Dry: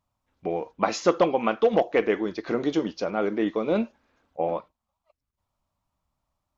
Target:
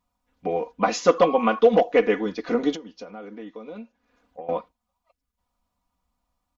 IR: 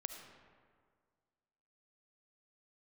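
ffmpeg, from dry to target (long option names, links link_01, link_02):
-filter_complex "[0:a]aecho=1:1:4.1:0.87,asettb=1/sr,asplit=3[link_01][link_02][link_03];[link_01]atrim=end=1.184[link_04];[link_02]atrim=start=1.18:end=1.59,asetpts=PTS-STARTPTS,afade=type=in:duration=0.004:curve=qsin,afade=type=out:start_time=0.406:duration=0.004:curve=qsin,aeval=exprs='val(0)+0.0316*sin(2*PI*1100*n/s)':channel_layout=same[link_05];[link_03]atrim=start=1.586[link_06];[link_04][link_05]acrossfade=duration=0.004:curve1=hsin:curve2=qsin[link_07];[link_07][link_06]acrossfade=duration=0.004:curve1=qsin:curve2=hsin,asettb=1/sr,asplit=3[link_08][link_09][link_10];[link_08]atrim=end=2.754[link_11];[link_09]atrim=start=2.75:end=4.49,asetpts=PTS-STARTPTS,afade=type=in:duration=0.004:curve=qsin,afade=type=out:start_time=1.736:duration=0.004:curve=qsin,acompressor=threshold=-37dB:ratio=6[link_12];[link_10]atrim=start=4.486[link_13];[link_11][link_12]acrossfade=duration=0.004:curve1=hsin:curve2=qsin[link_14];[link_14][link_13]acrossfade=duration=0.004:curve1=qsin:curve2=hsin"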